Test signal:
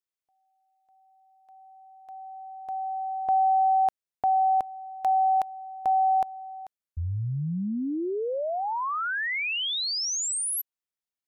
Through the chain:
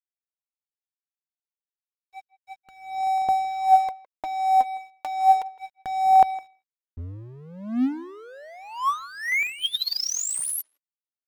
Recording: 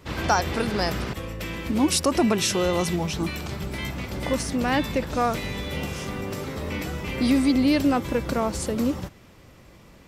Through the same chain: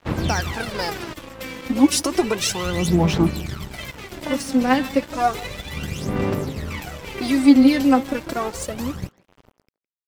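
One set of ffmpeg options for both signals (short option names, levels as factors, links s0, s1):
-filter_complex "[0:a]equalizer=f=60:t=o:w=0.26:g=-12.5,aphaser=in_gain=1:out_gain=1:delay=3.9:decay=0.72:speed=0.32:type=sinusoidal,aeval=exprs='sgn(val(0))*max(abs(val(0))-0.0168,0)':c=same,asplit=2[s0][s1];[s1]adelay=160,highpass=300,lowpass=3400,asoftclip=type=hard:threshold=0.335,volume=0.1[s2];[s0][s2]amix=inputs=2:normalize=0"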